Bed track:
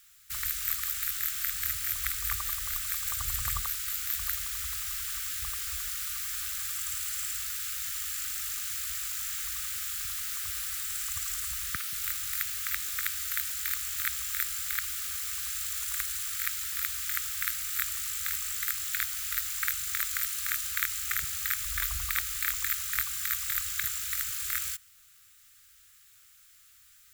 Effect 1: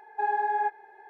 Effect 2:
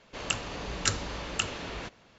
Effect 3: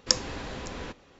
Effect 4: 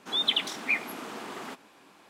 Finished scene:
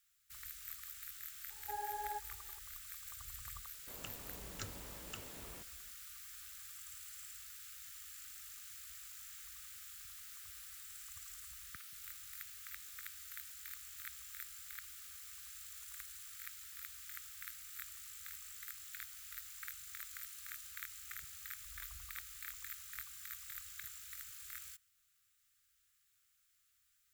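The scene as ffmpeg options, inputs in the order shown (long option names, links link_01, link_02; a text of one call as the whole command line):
ffmpeg -i bed.wav -i cue0.wav -i cue1.wav -filter_complex "[0:a]volume=-17.5dB[link_01];[1:a]lowpass=1800[link_02];[2:a]tiltshelf=frequency=970:gain=3[link_03];[link_02]atrim=end=1.09,asetpts=PTS-STARTPTS,volume=-15.5dB,afade=type=in:duration=0.004:curve=hsin,afade=type=out:start_time=1.086:duration=0.004:curve=hsin,adelay=1500[link_04];[link_03]atrim=end=2.18,asetpts=PTS-STARTPTS,volume=-17.5dB,afade=type=in:duration=0.004:curve=hsin,afade=type=out:start_time=2.176:duration=0.004:curve=hsin,adelay=3740[link_05];[link_01][link_04][link_05]amix=inputs=3:normalize=0" out.wav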